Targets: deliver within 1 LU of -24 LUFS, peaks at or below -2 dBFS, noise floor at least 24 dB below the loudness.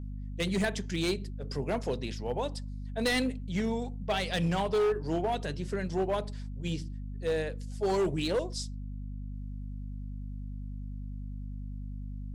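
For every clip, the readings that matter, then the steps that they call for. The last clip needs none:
clipped samples 2.0%; clipping level -23.5 dBFS; hum 50 Hz; highest harmonic 250 Hz; hum level -36 dBFS; loudness -33.5 LUFS; peak level -23.5 dBFS; loudness target -24.0 LUFS
-> clip repair -23.5 dBFS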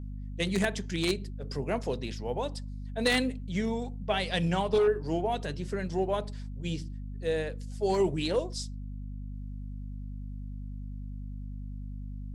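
clipped samples 0.0%; hum 50 Hz; highest harmonic 250 Hz; hum level -36 dBFS
-> de-hum 50 Hz, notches 5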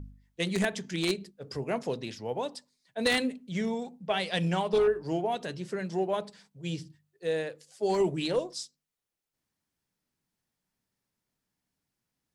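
hum not found; loudness -31.0 LUFS; peak level -14.0 dBFS; loudness target -24.0 LUFS
-> trim +7 dB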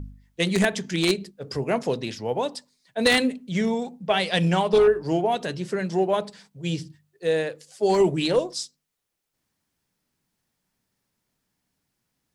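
loudness -24.0 LUFS; peak level -7.0 dBFS; noise floor -79 dBFS

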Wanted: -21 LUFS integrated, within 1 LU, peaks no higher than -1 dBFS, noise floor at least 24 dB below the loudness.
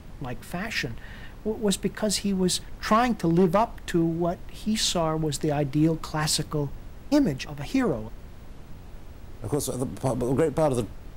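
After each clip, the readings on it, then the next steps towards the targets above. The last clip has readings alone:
clipped samples 0.2%; clipping level -13.5 dBFS; noise floor -44 dBFS; noise floor target -50 dBFS; loudness -26.0 LUFS; peak level -13.5 dBFS; loudness target -21.0 LUFS
-> clip repair -13.5 dBFS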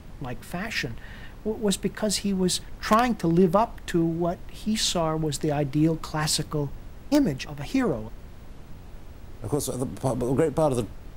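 clipped samples 0.0%; noise floor -44 dBFS; noise floor target -50 dBFS
-> noise print and reduce 6 dB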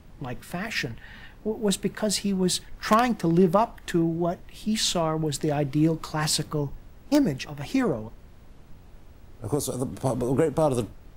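noise floor -50 dBFS; loudness -26.0 LUFS; peak level -4.5 dBFS; loudness target -21.0 LUFS
-> trim +5 dB; peak limiter -1 dBFS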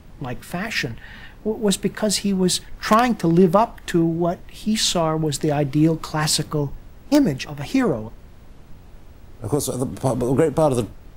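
loudness -21.0 LUFS; peak level -1.0 dBFS; noise floor -45 dBFS

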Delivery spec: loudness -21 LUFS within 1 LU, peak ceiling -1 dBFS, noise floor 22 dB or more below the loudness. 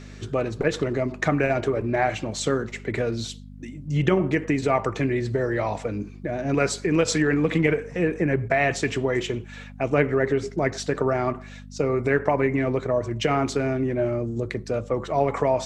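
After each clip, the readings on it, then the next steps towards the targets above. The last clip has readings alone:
hum 50 Hz; highest harmonic 250 Hz; hum level -39 dBFS; loudness -24.5 LUFS; peak level -5.0 dBFS; loudness target -21.0 LUFS
-> de-hum 50 Hz, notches 5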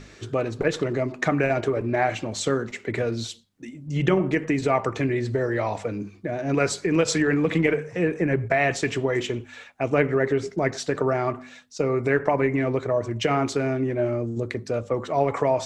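hum not found; loudness -24.5 LUFS; peak level -6.0 dBFS; loudness target -21.0 LUFS
-> trim +3.5 dB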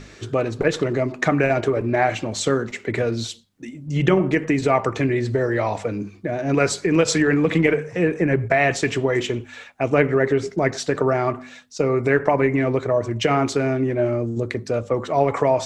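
loudness -21.0 LUFS; peak level -2.5 dBFS; noise floor -44 dBFS

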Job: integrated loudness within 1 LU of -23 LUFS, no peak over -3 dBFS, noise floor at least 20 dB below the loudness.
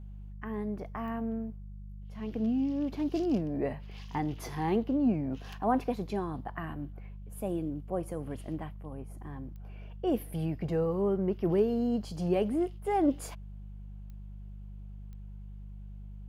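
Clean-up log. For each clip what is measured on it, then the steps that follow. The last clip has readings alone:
clicks found 4; hum 50 Hz; highest harmonic 200 Hz; hum level -41 dBFS; loudness -32.5 LUFS; peak level -16.0 dBFS; loudness target -23.0 LUFS
-> de-click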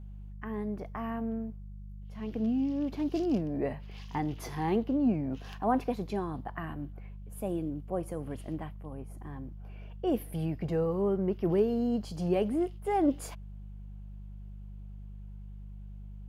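clicks found 0; hum 50 Hz; highest harmonic 200 Hz; hum level -41 dBFS
-> de-hum 50 Hz, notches 4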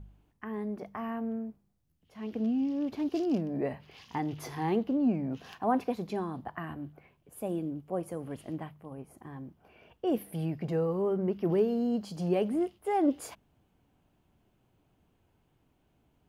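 hum not found; loudness -32.5 LUFS; peak level -16.0 dBFS; loudness target -23.0 LUFS
-> trim +9.5 dB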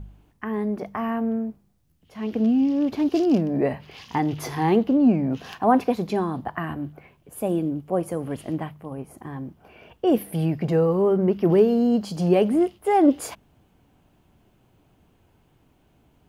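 loudness -23.0 LUFS; peak level -6.5 dBFS; noise floor -62 dBFS

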